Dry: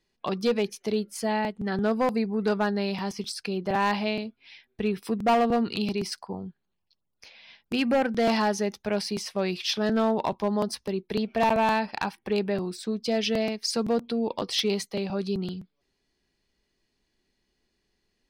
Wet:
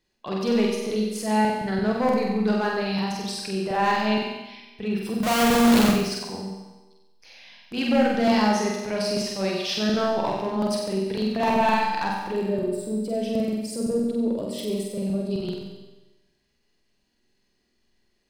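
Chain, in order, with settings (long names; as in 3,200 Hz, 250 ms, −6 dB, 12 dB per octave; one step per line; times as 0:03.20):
0:12.33–0:15.31: gain on a spectral selection 670–7,000 Hz −14 dB
four-comb reverb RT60 1.1 s, combs from 30 ms, DRR 4 dB
0:05.23–0:05.91: comparator with hysteresis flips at −36.5 dBFS
transient designer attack −7 dB, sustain −1 dB
on a send: flutter between parallel walls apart 8 metres, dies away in 0.79 s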